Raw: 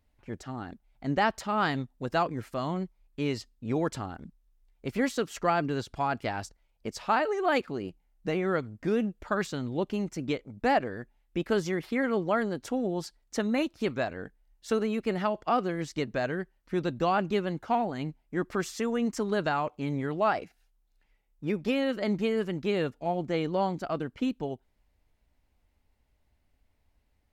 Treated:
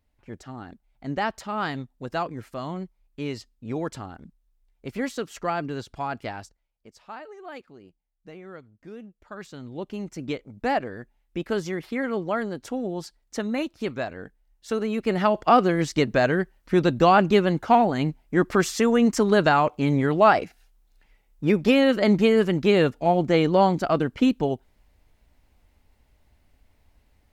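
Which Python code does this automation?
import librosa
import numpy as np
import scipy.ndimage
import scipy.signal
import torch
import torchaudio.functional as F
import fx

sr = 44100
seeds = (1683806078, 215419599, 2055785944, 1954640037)

y = fx.gain(x, sr, db=fx.line((6.3, -1.0), (6.87, -14.0), (9.16, -14.0), (9.6, -6.0), (10.27, 0.5), (14.72, 0.5), (15.41, 9.5)))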